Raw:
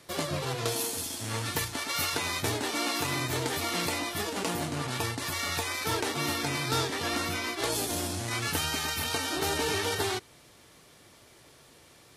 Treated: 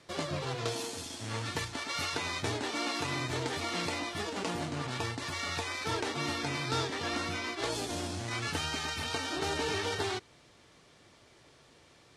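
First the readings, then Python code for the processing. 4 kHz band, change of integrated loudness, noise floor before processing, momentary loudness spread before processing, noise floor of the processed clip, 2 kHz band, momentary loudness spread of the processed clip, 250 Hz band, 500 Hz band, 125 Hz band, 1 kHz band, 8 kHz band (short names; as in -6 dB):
-4.0 dB, -4.0 dB, -56 dBFS, 3 LU, -60 dBFS, -3.5 dB, 4 LU, -3.0 dB, -3.0 dB, -3.0 dB, -3.0 dB, -8.0 dB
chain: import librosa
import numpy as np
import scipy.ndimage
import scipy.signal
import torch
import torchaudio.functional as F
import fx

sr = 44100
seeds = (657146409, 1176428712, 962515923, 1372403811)

y = scipy.signal.sosfilt(scipy.signal.bessel(4, 6400.0, 'lowpass', norm='mag', fs=sr, output='sos'), x)
y = y * librosa.db_to_amplitude(-3.0)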